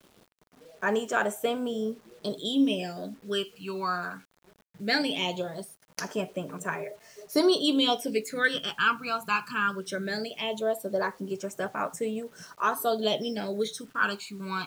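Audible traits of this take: phasing stages 12, 0.19 Hz, lowest notch 580–4300 Hz; a quantiser's noise floor 10-bit, dither none

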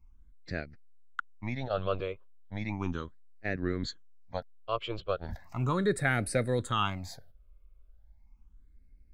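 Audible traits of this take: phasing stages 8, 0.36 Hz, lowest notch 240–1000 Hz

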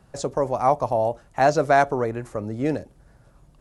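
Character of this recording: noise floor -56 dBFS; spectral tilt -5.5 dB/octave

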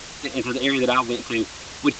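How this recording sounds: phasing stages 8, 3.7 Hz, lowest notch 510–2400 Hz; a quantiser's noise floor 6-bit, dither triangular; G.722

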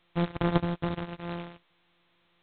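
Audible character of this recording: a buzz of ramps at a fixed pitch in blocks of 256 samples; G.726

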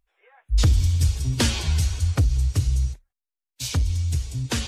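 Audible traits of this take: noise floor -88 dBFS; spectral tilt -4.5 dB/octave

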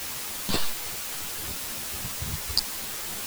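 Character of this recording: tremolo triangle 3.6 Hz, depth 100%; a quantiser's noise floor 8-bit, dither triangular; a shimmering, thickened sound

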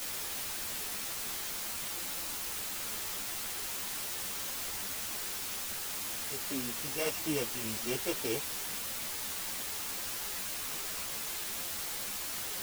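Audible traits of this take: a buzz of ramps at a fixed pitch in blocks of 16 samples; tremolo saw down 1.7 Hz, depth 50%; a quantiser's noise floor 6-bit, dither triangular; a shimmering, thickened sound

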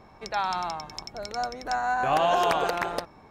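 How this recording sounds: noise floor -53 dBFS; spectral tilt -1.5 dB/octave

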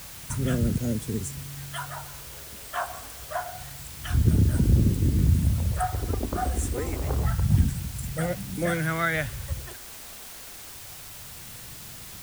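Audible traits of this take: phasing stages 2, 0.27 Hz, lowest notch 130–1000 Hz; a quantiser's noise floor 8-bit, dither triangular

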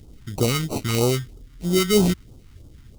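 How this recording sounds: aliases and images of a low sample rate 1.7 kHz, jitter 0%; phasing stages 2, 3.1 Hz, lowest notch 510–1800 Hz

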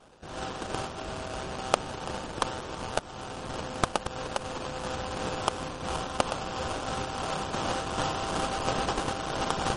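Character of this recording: aliases and images of a low sample rate 2.1 kHz, jitter 20%; tremolo triangle 2.9 Hz, depth 35%; MP3

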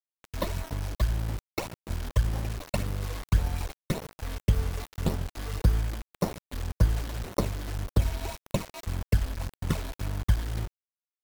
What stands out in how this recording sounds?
aliases and images of a low sample rate 1.6 kHz, jitter 0%; phasing stages 12, 1.8 Hz, lowest notch 130–3000 Hz; a quantiser's noise floor 6-bit, dither none; MP3

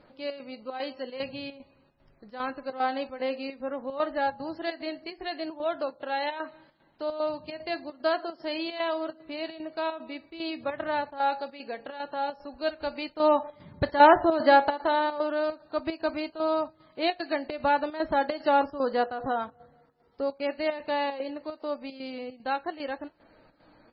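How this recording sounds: chopped level 2.5 Hz, depth 65%, duty 75%; MP3

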